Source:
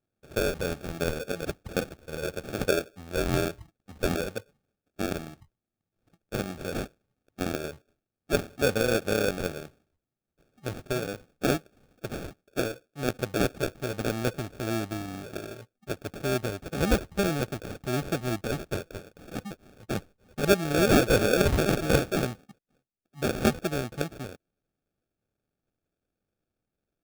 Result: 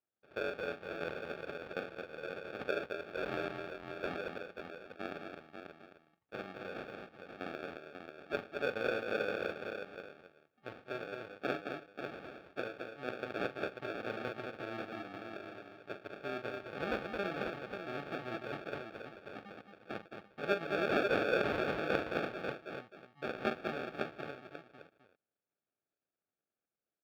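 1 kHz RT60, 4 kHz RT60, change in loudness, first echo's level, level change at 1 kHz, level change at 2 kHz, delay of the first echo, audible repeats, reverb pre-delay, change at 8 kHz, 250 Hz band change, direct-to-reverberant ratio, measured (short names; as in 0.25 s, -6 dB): none, none, -10.0 dB, -9.5 dB, -6.0 dB, -5.5 dB, 42 ms, 5, none, under -25 dB, -13.0 dB, none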